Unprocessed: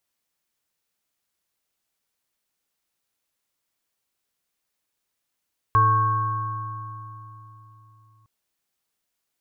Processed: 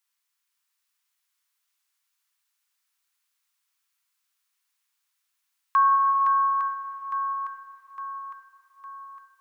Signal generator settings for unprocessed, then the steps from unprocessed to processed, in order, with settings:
inharmonic partials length 2.51 s, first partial 109 Hz, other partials 316/443/1,100/1,570 Hz, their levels −19/−14.5/5.5/−12 dB, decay 4.05 s, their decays 3.70/1.63/3.14/2.54 s, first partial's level −19.5 dB
Butterworth high-pass 940 Hz 36 dB per octave
on a send: feedback echo with a long and a short gap by turns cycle 858 ms, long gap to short 1.5 to 1, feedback 50%, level −6 dB
on the sum: reverb whose tail is shaped and stops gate 490 ms flat, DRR 7.5 dB

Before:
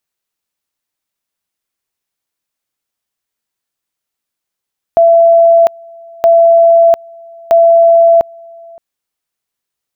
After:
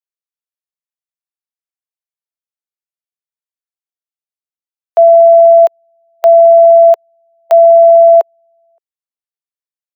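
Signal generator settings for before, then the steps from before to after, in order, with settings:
tone at two levels in turn 671 Hz −3 dBFS, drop 28 dB, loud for 0.70 s, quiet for 0.57 s, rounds 3
Butterworth high-pass 400 Hz 48 dB per octave
boost into a limiter +9 dB
expander for the loud parts 2.5 to 1, over −23 dBFS

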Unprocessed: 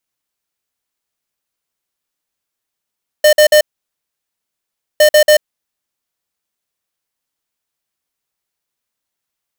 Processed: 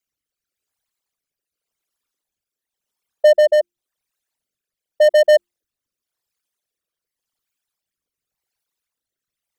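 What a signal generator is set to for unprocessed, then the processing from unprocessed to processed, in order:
beeps in groups square 605 Hz, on 0.09 s, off 0.05 s, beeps 3, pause 1.39 s, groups 2, −7 dBFS
spectral envelope exaggerated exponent 3
mains-hum notches 50/100/150/200/250/300/350 Hz
rotating-speaker cabinet horn 0.9 Hz

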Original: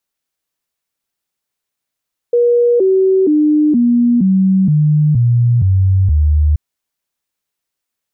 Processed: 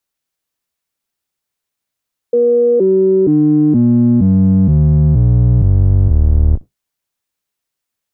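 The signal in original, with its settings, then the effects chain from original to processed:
stepped sweep 479 Hz down, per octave 3, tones 9, 0.47 s, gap 0.00 s −8 dBFS
sub-octave generator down 1 octave, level −4 dB

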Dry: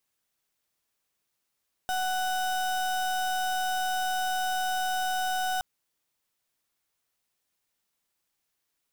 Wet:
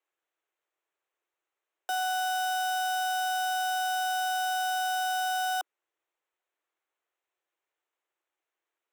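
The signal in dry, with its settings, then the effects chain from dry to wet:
pulse wave 744 Hz, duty 33% −28.5 dBFS 3.72 s
adaptive Wiener filter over 9 samples
Butterworth high-pass 310 Hz 96 dB per octave

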